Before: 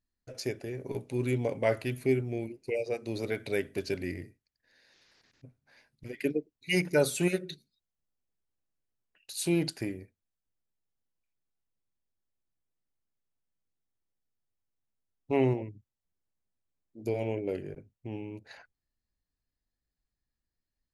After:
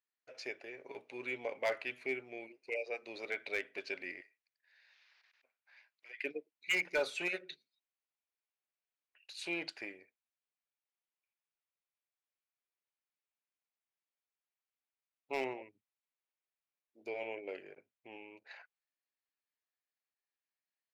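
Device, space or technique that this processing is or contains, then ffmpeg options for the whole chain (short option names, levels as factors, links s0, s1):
megaphone: -filter_complex "[0:a]asettb=1/sr,asplit=3[s0][s1][s2];[s0]atrim=end=4.214[s3];[s1]atrim=start=4.21:end=6.24,asetpts=PTS-STARTPTS,afade=t=in:d=0.004:c=qsin,afade=t=out:st=2.026:d=0.004:c=qsin,highpass=850[s4];[s2]atrim=start=6.236[s5];[s3][s4]acrossfade=d=0.004:c1=hsin:c2=qsin[s6];[s6][s5]acrossfade=d=0.004:c1=qsin:c2=hsin,highpass=670,lowpass=3700,equalizer=f=2400:t=o:w=0.52:g=5.5,asoftclip=type=hard:threshold=0.0631,volume=0.75"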